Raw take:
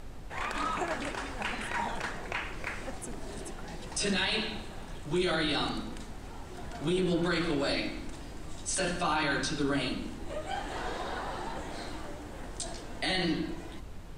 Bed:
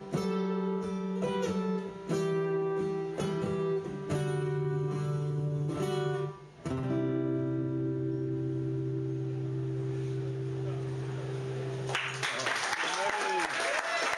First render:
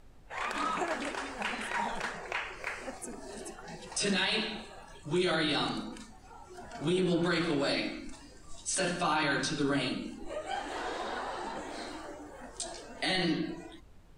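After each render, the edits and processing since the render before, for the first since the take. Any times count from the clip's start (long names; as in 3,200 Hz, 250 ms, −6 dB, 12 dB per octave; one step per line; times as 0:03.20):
noise reduction from a noise print 12 dB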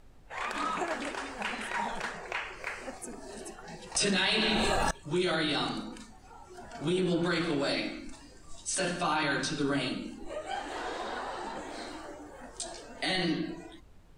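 0:03.95–0:04.91: envelope flattener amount 100%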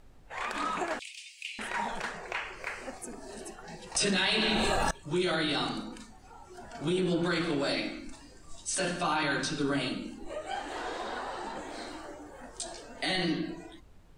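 0:00.99–0:01.59: Butterworth high-pass 2,300 Hz 72 dB per octave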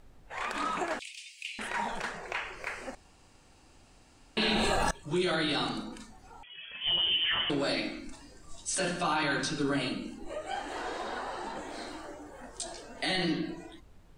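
0:02.95–0:04.37: fill with room tone
0:06.43–0:07.50: voice inversion scrambler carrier 3,300 Hz
0:09.53–0:11.42: notch filter 3,500 Hz, Q 14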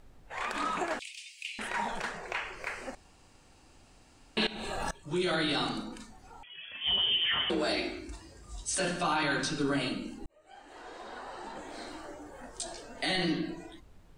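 0:04.47–0:05.35: fade in, from −18 dB
0:06.63–0:08.78: frequency shifter +40 Hz
0:10.26–0:12.24: fade in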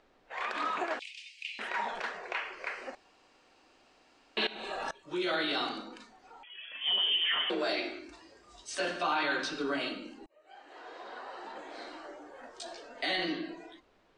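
three-way crossover with the lows and the highs turned down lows −21 dB, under 280 Hz, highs −21 dB, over 5,600 Hz
notch filter 860 Hz, Q 19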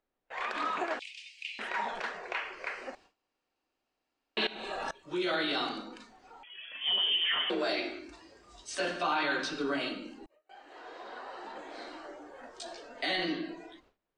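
low-shelf EQ 210 Hz +3.5 dB
noise gate with hold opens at −51 dBFS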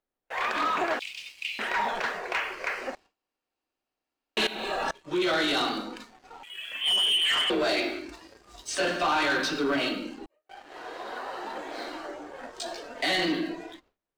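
leveller curve on the samples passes 2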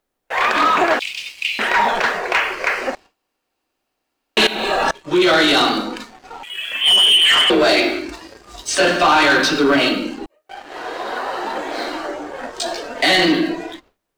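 level +12 dB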